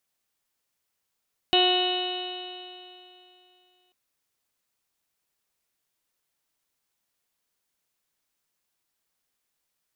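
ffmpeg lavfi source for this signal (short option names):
-f lavfi -i "aevalsrc='0.075*pow(10,-3*t/2.83)*sin(2*PI*363.1*t)+0.075*pow(10,-3*t/2.83)*sin(2*PI*726.81*t)+0.0158*pow(10,-3*t/2.83)*sin(2*PI*1091.74*t)+0.0133*pow(10,-3*t/2.83)*sin(2*PI*1458.49*t)+0.0133*pow(10,-3*t/2.83)*sin(2*PI*1827.66*t)+0.00944*pow(10,-3*t/2.83)*sin(2*PI*2199.84*t)+0.0299*pow(10,-3*t/2.83)*sin(2*PI*2575.63*t)+0.106*pow(10,-3*t/2.83)*sin(2*PI*2955.58*t)+0.0119*pow(10,-3*t/2.83)*sin(2*PI*3340.27*t)+0.0531*pow(10,-3*t/2.83)*sin(2*PI*3730.26*t)+0.0158*pow(10,-3*t/2.83)*sin(2*PI*4126.07*t)':d=2.39:s=44100"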